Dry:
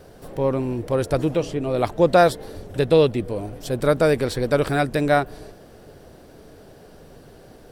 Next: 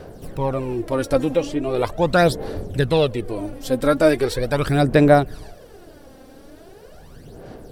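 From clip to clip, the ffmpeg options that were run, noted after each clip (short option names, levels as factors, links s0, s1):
-af "aphaser=in_gain=1:out_gain=1:delay=3.8:decay=0.61:speed=0.4:type=sinusoidal"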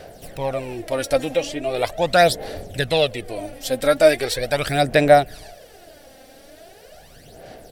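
-af "firequalizer=gain_entry='entry(390,0);entry(670,12);entry(1000,0);entry(1900,12)':delay=0.05:min_phase=1,volume=0.473"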